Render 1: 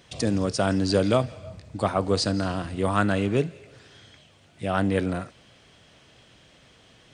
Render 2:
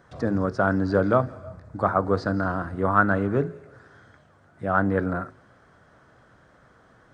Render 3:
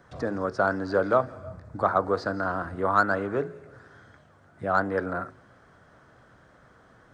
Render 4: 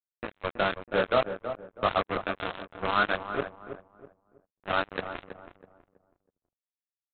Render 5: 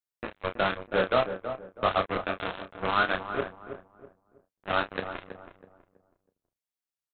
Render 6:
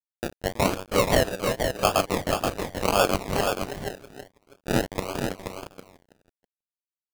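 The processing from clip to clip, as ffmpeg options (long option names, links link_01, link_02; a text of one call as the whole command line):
ffmpeg -i in.wav -filter_complex "[0:a]bandreject=frequency=52.85:width_type=h:width=4,bandreject=frequency=105.7:width_type=h:width=4,bandreject=frequency=158.55:width_type=h:width=4,bandreject=frequency=211.4:width_type=h:width=4,bandreject=frequency=264.25:width_type=h:width=4,bandreject=frequency=317.1:width_type=h:width=4,bandreject=frequency=369.95:width_type=h:width=4,bandreject=frequency=422.8:width_type=h:width=4,acrossover=split=5500[link_01][link_02];[link_02]acompressor=threshold=-59dB:ratio=4:attack=1:release=60[link_03];[link_01][link_03]amix=inputs=2:normalize=0,highshelf=frequency=2000:width_type=q:width=3:gain=-11" out.wav
ffmpeg -i in.wav -filter_complex "[0:a]acrossover=split=360|1500[link_01][link_02][link_03];[link_01]acompressor=threshold=-35dB:ratio=6[link_04];[link_03]asoftclip=type=tanh:threshold=-27.5dB[link_05];[link_04][link_02][link_05]amix=inputs=3:normalize=0" out.wav
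ffmpeg -i in.wav -filter_complex "[0:a]flanger=delay=19:depth=7.6:speed=0.56,aresample=8000,acrusher=bits=3:mix=0:aa=0.5,aresample=44100,asplit=2[link_01][link_02];[link_02]adelay=324,lowpass=frequency=1100:poles=1,volume=-8.5dB,asplit=2[link_03][link_04];[link_04]adelay=324,lowpass=frequency=1100:poles=1,volume=0.34,asplit=2[link_05][link_06];[link_06]adelay=324,lowpass=frequency=1100:poles=1,volume=0.34,asplit=2[link_07][link_08];[link_08]adelay=324,lowpass=frequency=1100:poles=1,volume=0.34[link_09];[link_01][link_03][link_05][link_07][link_09]amix=inputs=5:normalize=0" out.wav
ffmpeg -i in.wav -filter_complex "[0:a]asplit=2[link_01][link_02];[link_02]adelay=32,volume=-9.5dB[link_03];[link_01][link_03]amix=inputs=2:normalize=0" out.wav
ffmpeg -i in.wav -filter_complex "[0:a]acrusher=samples=32:mix=1:aa=0.000001:lfo=1:lforange=19.2:lforate=0.91,aeval=exprs='sgn(val(0))*max(abs(val(0))-0.00158,0)':channel_layout=same,asplit=2[link_01][link_02];[link_02]aecho=0:1:478:0.531[link_03];[link_01][link_03]amix=inputs=2:normalize=0,volume=4dB" out.wav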